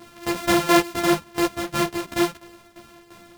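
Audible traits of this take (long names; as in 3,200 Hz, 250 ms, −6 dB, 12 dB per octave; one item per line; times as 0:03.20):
a buzz of ramps at a fixed pitch in blocks of 128 samples
tremolo saw down 2.9 Hz, depth 75%
a shimmering, thickened sound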